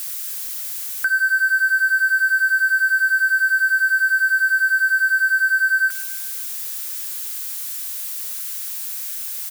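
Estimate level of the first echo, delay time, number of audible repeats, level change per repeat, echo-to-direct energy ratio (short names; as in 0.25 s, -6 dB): -21.0 dB, 0.14 s, 3, -5.0 dB, -19.5 dB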